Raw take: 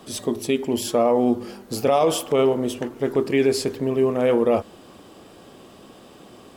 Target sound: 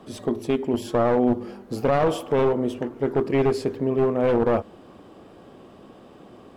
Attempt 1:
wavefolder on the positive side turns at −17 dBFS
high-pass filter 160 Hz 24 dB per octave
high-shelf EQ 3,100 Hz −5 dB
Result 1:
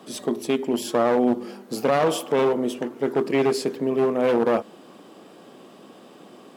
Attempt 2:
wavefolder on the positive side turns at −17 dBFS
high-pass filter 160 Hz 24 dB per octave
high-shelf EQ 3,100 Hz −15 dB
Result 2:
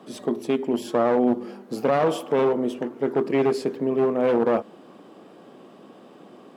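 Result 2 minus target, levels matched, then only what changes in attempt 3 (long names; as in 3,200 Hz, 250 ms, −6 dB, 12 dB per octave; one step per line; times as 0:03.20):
125 Hz band −7.0 dB
remove: high-pass filter 160 Hz 24 dB per octave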